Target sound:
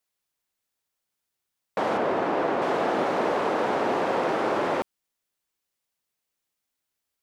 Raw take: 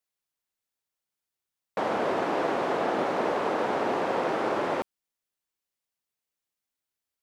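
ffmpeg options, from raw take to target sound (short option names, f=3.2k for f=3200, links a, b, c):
-filter_complex "[0:a]asettb=1/sr,asplit=3[a][b][c];[a]atrim=end=1.974[d];[b]atrim=start=1.97:end=2.62,asetpts=PTS-STARTPTS,afade=t=in:d=0.004:c=qsin,afade=t=out:st=0.646:d=0.004:c=qsin,highshelf=f=4.1k:g=-9.5[e];[c]atrim=start=2.616[f];[d][e]acrossfade=d=0.004:c1=hsin:c2=qsin[g];[g][f]acrossfade=d=0.004:c1=qsin:c2=hsin,asplit=2[h][i];[i]alimiter=level_in=3dB:limit=-24dB:level=0:latency=1,volume=-3dB,volume=-2.5dB[j];[h][j]amix=inputs=2:normalize=0"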